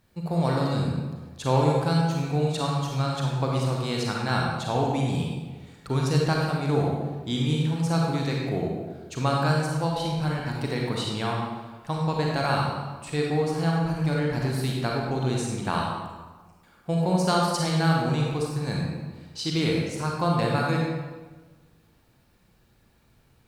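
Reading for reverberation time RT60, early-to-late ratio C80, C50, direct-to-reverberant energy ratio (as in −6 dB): 1.4 s, 2.0 dB, −1.0 dB, −2.5 dB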